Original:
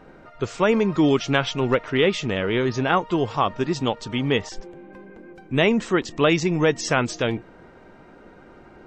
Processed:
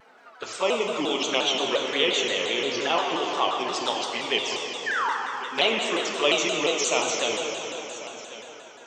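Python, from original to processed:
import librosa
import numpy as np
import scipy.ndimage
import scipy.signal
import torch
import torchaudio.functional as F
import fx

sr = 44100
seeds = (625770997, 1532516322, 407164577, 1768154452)

p1 = scipy.signal.sosfilt(scipy.signal.butter(2, 610.0, 'highpass', fs=sr, output='sos'), x)
p2 = fx.high_shelf(p1, sr, hz=3700.0, db=7.5)
p3 = fx.env_flanger(p2, sr, rest_ms=5.2, full_db=-23.0)
p4 = fx.spec_paint(p3, sr, seeds[0], shape='fall', start_s=4.86, length_s=0.27, low_hz=800.0, high_hz=2000.0, level_db=-27.0)
p5 = p4 + fx.echo_single(p4, sr, ms=1097, db=-16.0, dry=0)
p6 = fx.rev_plate(p5, sr, seeds[1], rt60_s=3.7, hf_ratio=0.9, predelay_ms=0, drr_db=-0.5)
y = fx.vibrato_shape(p6, sr, shape='saw_down', rate_hz=5.7, depth_cents=160.0)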